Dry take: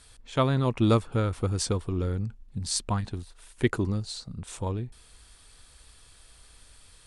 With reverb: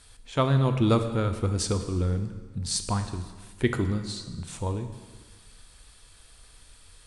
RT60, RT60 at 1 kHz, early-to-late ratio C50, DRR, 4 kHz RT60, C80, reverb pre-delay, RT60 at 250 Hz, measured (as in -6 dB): 1.4 s, 1.4 s, 9.5 dB, 7.5 dB, 1.3 s, 11.0 dB, 7 ms, 1.4 s